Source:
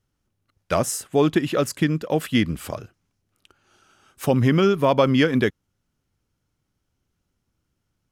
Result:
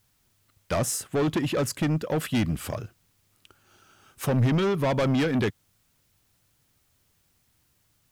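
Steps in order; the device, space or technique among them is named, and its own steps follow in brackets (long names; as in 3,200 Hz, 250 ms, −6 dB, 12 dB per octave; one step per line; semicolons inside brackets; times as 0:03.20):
open-reel tape (soft clipping −21 dBFS, distortion −8 dB; parametric band 110 Hz +4.5 dB 1.07 octaves; white noise bed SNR 41 dB)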